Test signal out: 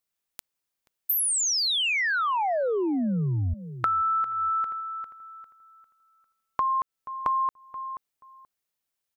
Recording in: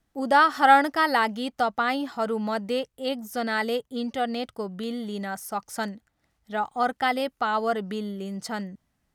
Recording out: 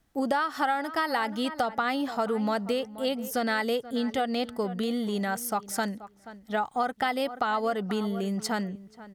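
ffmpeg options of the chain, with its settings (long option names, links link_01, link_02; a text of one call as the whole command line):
ffmpeg -i in.wav -filter_complex "[0:a]highshelf=frequency=12000:gain=3.5,asplit=2[link_01][link_02];[link_02]adelay=480,lowpass=frequency=1900:poles=1,volume=-17.5dB,asplit=2[link_03][link_04];[link_04]adelay=480,lowpass=frequency=1900:poles=1,volume=0.18[link_05];[link_01][link_03][link_05]amix=inputs=3:normalize=0,acompressor=threshold=-27dB:ratio=10,volume=3.5dB" out.wav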